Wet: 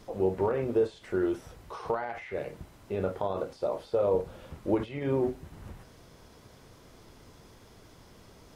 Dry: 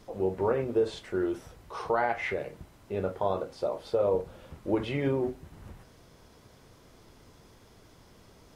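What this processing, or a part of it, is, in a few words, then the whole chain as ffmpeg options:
de-esser from a sidechain: -filter_complex "[0:a]asplit=2[link_01][link_02];[link_02]highpass=4200,apad=whole_len=377152[link_03];[link_01][link_03]sidechaincompress=threshold=-56dB:ratio=10:attack=4:release=68,volume=2dB"

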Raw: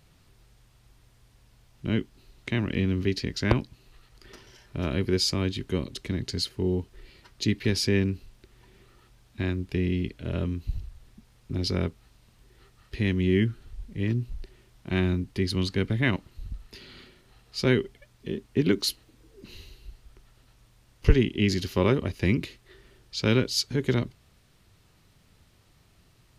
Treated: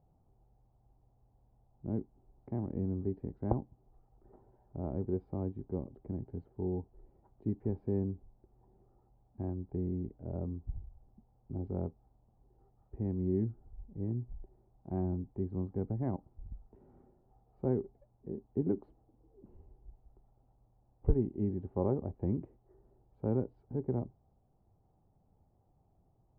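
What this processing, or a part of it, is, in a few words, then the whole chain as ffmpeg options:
under water: -af "lowpass=frequency=820:width=0.5412,lowpass=frequency=820:width=1.3066,equalizer=frequency=790:width_type=o:width=0.33:gain=11,volume=-9dB"

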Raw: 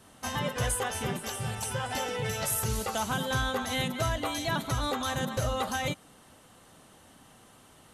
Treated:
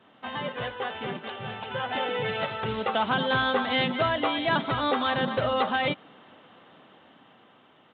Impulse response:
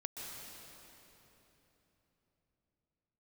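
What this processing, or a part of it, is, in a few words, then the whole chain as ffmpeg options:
Bluetooth headset: -af "highpass=200,dynaudnorm=framelen=550:gausssize=7:maxgain=6.5dB,aresample=8000,aresample=44100" -ar 16000 -c:a sbc -b:a 64k

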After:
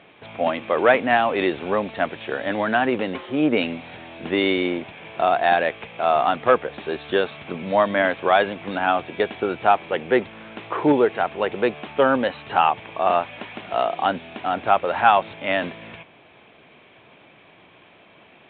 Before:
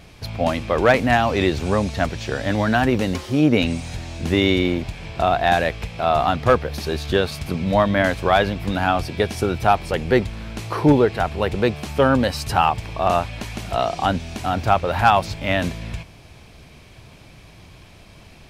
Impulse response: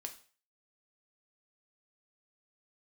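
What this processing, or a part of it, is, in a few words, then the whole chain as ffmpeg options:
telephone: -af "highpass=300,lowpass=3600" -ar 8000 -c:a pcm_mulaw

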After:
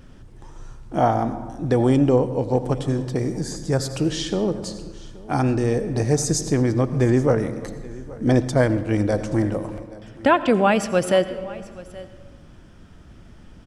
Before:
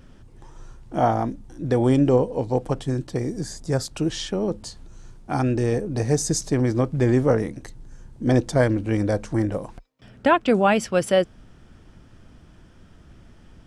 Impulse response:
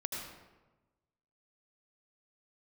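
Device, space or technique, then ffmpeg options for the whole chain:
compressed reverb return: -filter_complex "[0:a]aecho=1:1:826:0.0841,asplit=2[link_01][link_02];[1:a]atrim=start_sample=2205[link_03];[link_02][link_03]afir=irnorm=-1:irlink=0,acompressor=threshold=-20dB:ratio=6,volume=-5dB[link_04];[link_01][link_04]amix=inputs=2:normalize=0,volume=-1dB"

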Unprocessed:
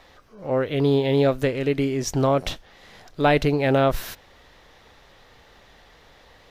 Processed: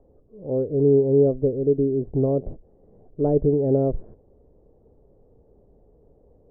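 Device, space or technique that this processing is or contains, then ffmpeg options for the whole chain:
under water: -af "lowpass=frequency=520:width=0.5412,lowpass=frequency=520:width=1.3066,equalizer=frequency=420:width_type=o:width=0.21:gain=5.5"

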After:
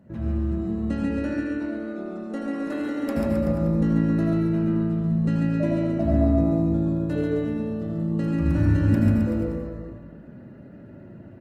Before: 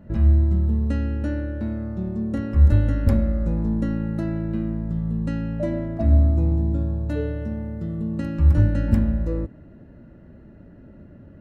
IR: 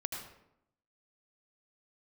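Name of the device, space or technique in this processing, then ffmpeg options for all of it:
far-field microphone of a smart speaker: -filter_complex "[0:a]asettb=1/sr,asplit=3[link_01][link_02][link_03];[link_01]atrim=end=1.104[link_04];[link_02]atrim=start=1.1:end=3.17,asetpts=PTS-STARTPTS,afade=type=in:duration=0.004:curve=qsin,afade=type=out:start_time=2.066:duration=0.004:curve=qsin,highpass=frequency=280:width=0.5412,highpass=frequency=280:width=1.3066[link_05];[link_03]atrim=start=3.166[link_06];[link_04][link_05]acrossfade=duration=0.004:curve1=hsin:curve2=qsin[link_07];[link_07][link_06]acrossfade=duration=0.004:curve1=qsin:curve2=hsin,aecho=1:1:140|266|379.4|481.5|573.3:0.631|0.398|0.251|0.158|0.1[link_08];[1:a]atrim=start_sample=2205[link_09];[link_08][link_09]afir=irnorm=-1:irlink=0,highpass=120,dynaudnorm=framelen=210:gausssize=7:maxgain=4dB,volume=-4dB" -ar 48000 -c:a libopus -b:a 20k

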